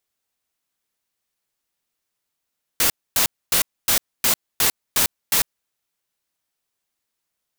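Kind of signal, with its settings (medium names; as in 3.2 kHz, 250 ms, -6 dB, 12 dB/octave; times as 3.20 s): noise bursts white, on 0.10 s, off 0.26 s, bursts 8, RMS -17.5 dBFS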